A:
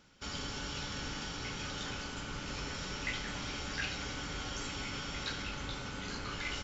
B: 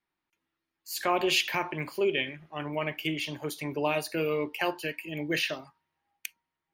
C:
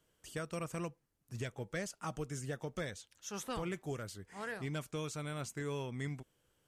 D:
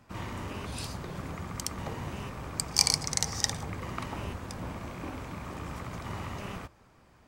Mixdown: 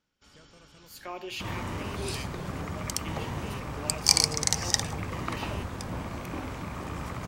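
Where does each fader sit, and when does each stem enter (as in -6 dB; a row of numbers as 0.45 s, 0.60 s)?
-17.0 dB, -12.5 dB, -17.5 dB, +3.0 dB; 0.00 s, 0.00 s, 0.00 s, 1.30 s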